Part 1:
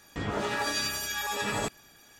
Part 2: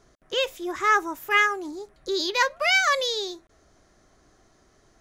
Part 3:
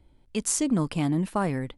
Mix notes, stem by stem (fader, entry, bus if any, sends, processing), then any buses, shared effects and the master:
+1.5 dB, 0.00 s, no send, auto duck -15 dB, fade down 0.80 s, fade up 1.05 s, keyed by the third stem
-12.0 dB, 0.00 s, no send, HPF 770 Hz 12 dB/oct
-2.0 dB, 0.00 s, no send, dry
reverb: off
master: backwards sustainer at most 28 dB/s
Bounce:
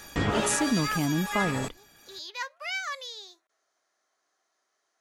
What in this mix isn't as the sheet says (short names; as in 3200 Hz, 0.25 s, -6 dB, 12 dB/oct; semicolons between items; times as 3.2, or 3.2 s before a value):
stem 1 +1.5 dB -> +11.0 dB; master: missing backwards sustainer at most 28 dB/s